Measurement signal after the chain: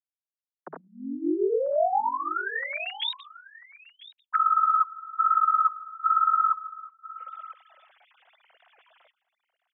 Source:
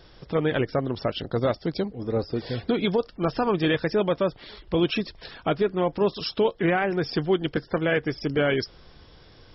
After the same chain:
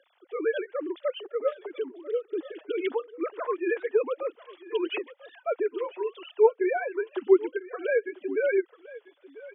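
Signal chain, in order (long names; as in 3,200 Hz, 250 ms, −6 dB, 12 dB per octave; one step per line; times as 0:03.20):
three sine waves on the formant tracks
Butterworth high-pass 270 Hz 36 dB per octave
flanger 0.93 Hz, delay 0 ms, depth 7.4 ms, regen −3%
single-tap delay 994 ms −18.5 dB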